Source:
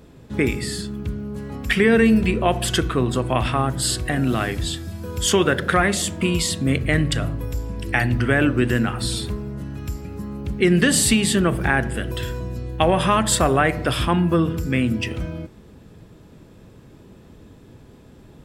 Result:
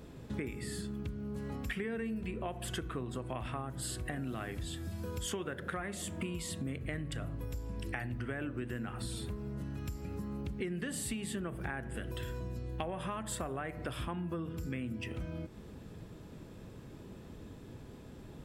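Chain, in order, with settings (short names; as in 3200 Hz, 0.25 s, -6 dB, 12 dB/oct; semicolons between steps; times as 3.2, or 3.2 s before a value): dynamic EQ 4800 Hz, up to -7 dB, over -40 dBFS, Q 1; compressor 6:1, threshold -33 dBFS, peak gain reduction 19 dB; gain -3.5 dB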